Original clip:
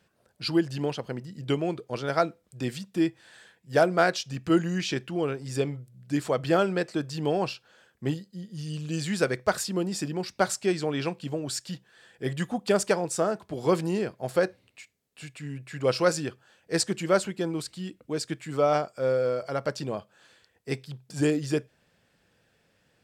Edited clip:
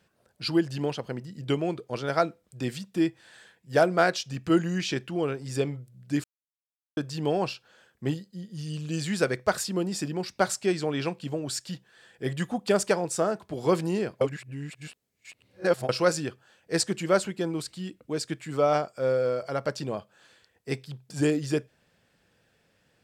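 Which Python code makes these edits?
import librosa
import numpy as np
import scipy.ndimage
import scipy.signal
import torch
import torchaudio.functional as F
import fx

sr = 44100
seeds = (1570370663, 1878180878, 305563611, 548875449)

y = fx.edit(x, sr, fx.silence(start_s=6.24, length_s=0.73),
    fx.reverse_span(start_s=14.21, length_s=1.68), tone=tone)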